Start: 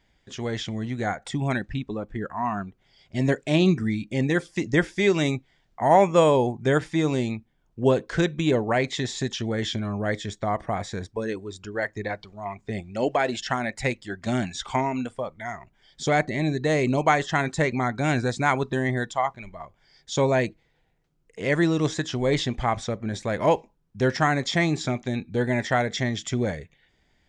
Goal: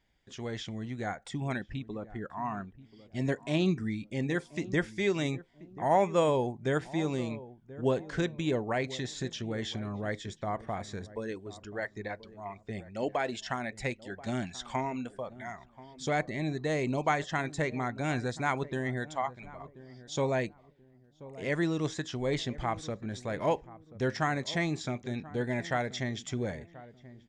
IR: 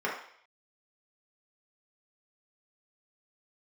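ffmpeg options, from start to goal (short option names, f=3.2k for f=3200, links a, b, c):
-filter_complex "[0:a]asplit=2[a][b];[b]adelay=1033,lowpass=f=810:p=1,volume=-16dB,asplit=2[c][d];[d]adelay=1033,lowpass=f=810:p=1,volume=0.32,asplit=2[e][f];[f]adelay=1033,lowpass=f=810:p=1,volume=0.32[g];[a][c][e][g]amix=inputs=4:normalize=0,volume=-8dB"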